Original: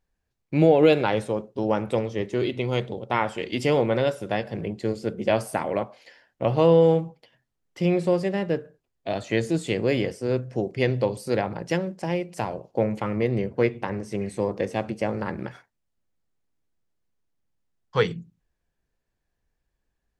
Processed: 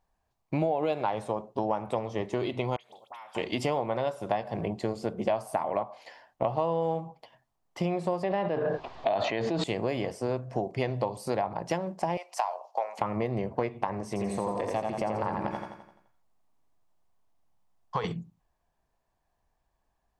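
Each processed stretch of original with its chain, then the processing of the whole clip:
2.76–3.35 differentiator + compressor, threshold -47 dBFS + dispersion highs, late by 51 ms, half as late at 2300 Hz
8.23–9.64 LPF 4300 Hz 24 dB/oct + low shelf 160 Hz -11 dB + fast leveller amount 100%
12.17–12.99 HPF 680 Hz 24 dB/oct + bell 5500 Hz +6 dB 0.63 oct
14.07–18.04 compressor, threshold -26 dBFS + feedback echo 85 ms, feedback 51%, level -4 dB
whole clip: band shelf 850 Hz +11 dB 1.1 oct; compressor 5:1, threshold -26 dBFS

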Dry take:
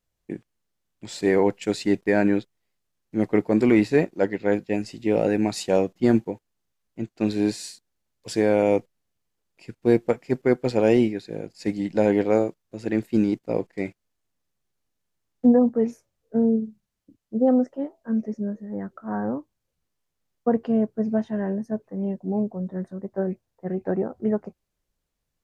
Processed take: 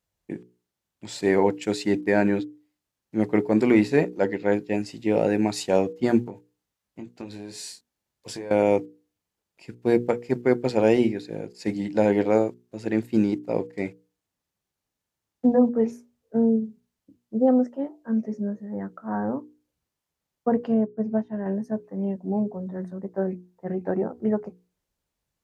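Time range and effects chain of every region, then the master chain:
6.24–8.51 compressor 5:1, threshold -33 dBFS + doubler 21 ms -7.5 dB
20.74–21.46 high shelf 2400 Hz -9 dB + upward expander, over -41 dBFS
whole clip: HPF 45 Hz; bell 890 Hz +3.5 dB 0.21 oct; notches 60/120/180/240/300/360/420/480 Hz

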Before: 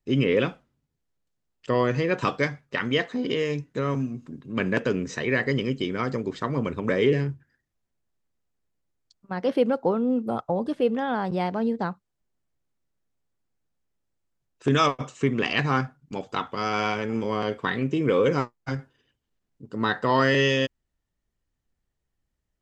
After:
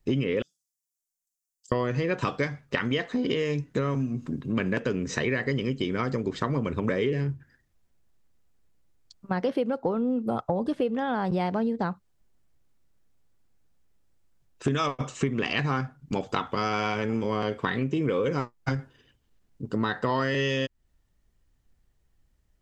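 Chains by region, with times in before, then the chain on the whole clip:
0.42–1.72 inverse Chebyshev high-pass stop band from 2500 Hz, stop band 50 dB + comb 6.9 ms, depth 39%
whole clip: low shelf 95 Hz +7 dB; compressor 6:1, threshold -31 dBFS; gain +7 dB

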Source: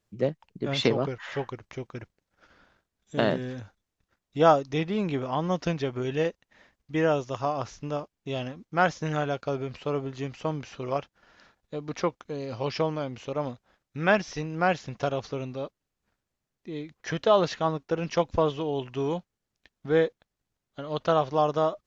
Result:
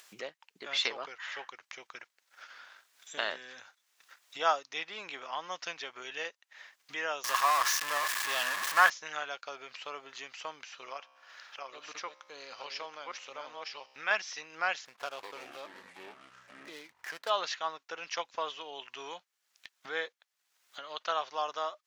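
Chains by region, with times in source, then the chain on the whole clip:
7.24–8.9 zero-crossing step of -24 dBFS + small resonant body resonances 1100/1700 Hz, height 13 dB, ringing for 20 ms
10.65–14.11 reverse delay 0.642 s, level -2 dB + resonator 66 Hz, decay 1.1 s, mix 40%
14.85–17.3 median filter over 15 samples + echoes that change speed 0.125 s, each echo -6 st, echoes 3, each echo -6 dB
whole clip: HPF 1300 Hz 12 dB/oct; upward compressor, threshold -39 dBFS

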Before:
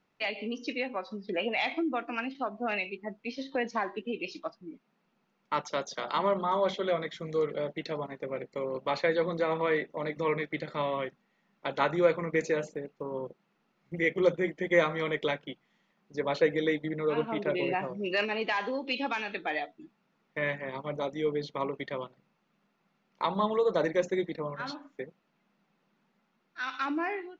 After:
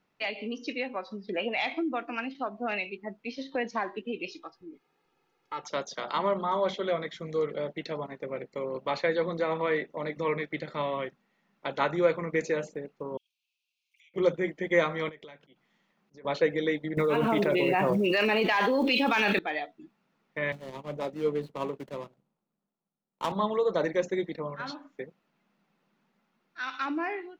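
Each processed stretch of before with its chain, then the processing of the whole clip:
4.3–5.63 comb 2.4 ms, depth 88% + compressor 1.5:1, threshold -48 dBFS
13.17–14.14 steep high-pass 2400 Hz 96 dB/oct + compressor, threshold -60 dBFS
15.09–16.25 compressor 10:1, threshold -44 dBFS + auto swell 0.123 s
16.97–19.39 block floating point 7-bit + fast leveller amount 100%
20.52–23.32 median filter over 25 samples + three-band expander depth 40%
whole clip: dry

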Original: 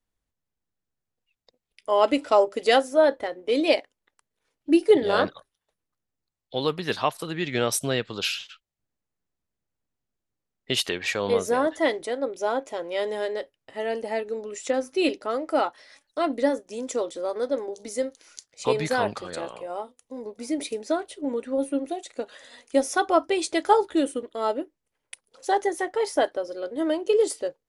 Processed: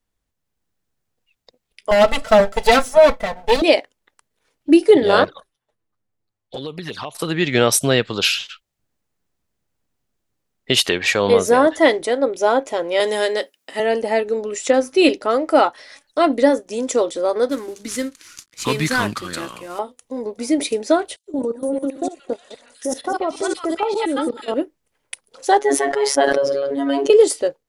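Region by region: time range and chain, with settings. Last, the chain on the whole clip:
1.91–3.62 minimum comb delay 1.5 ms + comb 4.5 ms, depth 68%
5.24–7.15 envelope flanger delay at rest 9.4 ms, full sweep at -22 dBFS + compressor, threshold -35 dBFS + mismatched tape noise reduction decoder only
13–13.8 resonant high-pass 220 Hz, resonance Q 2.1 + tilt +3 dB/oct
17.49–19.79 CVSD 64 kbps + band shelf 610 Hz -11.5 dB 1.3 oct
21.16–24.54 reverse delay 0.116 s, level -8 dB + three bands offset in time highs, lows, mids 0.11/0.47 s, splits 1400/4300 Hz + level quantiser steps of 15 dB
25.59–27.1 high shelf 6900 Hz -10.5 dB + robotiser 139 Hz + sustainer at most 22 dB/s
whole clip: AGC gain up to 4.5 dB; maximiser +6 dB; gain -1 dB

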